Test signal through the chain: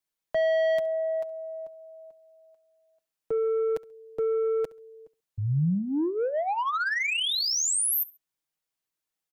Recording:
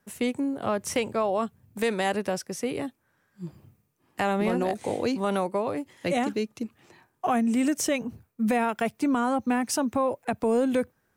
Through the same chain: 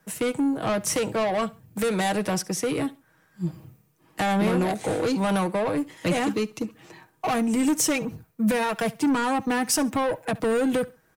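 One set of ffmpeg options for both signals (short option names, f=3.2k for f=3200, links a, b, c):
-filter_complex "[0:a]aecho=1:1:6.3:0.51,acrossover=split=200|7600[a][b][c];[b]asoftclip=type=tanh:threshold=-28.5dB[d];[a][d][c]amix=inputs=3:normalize=0,aecho=1:1:68|136:0.0891|0.025,volume=6.5dB"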